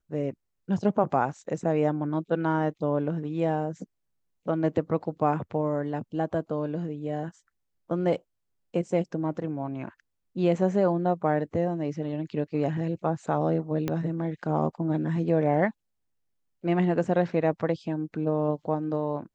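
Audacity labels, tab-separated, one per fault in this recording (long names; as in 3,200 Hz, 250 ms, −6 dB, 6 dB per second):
13.880000	13.880000	click −15 dBFS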